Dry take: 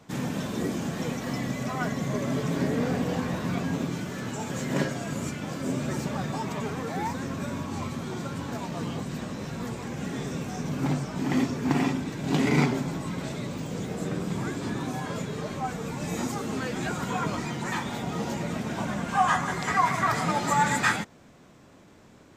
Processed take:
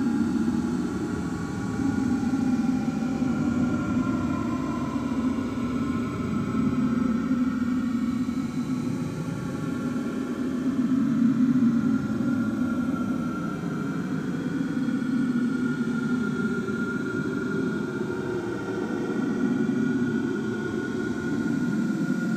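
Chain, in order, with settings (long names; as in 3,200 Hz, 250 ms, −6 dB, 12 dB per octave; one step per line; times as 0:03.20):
extreme stretch with random phases 47×, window 0.05 s, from 0:07.73
hollow resonant body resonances 260/1,400 Hz, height 17 dB, ringing for 30 ms
level −4 dB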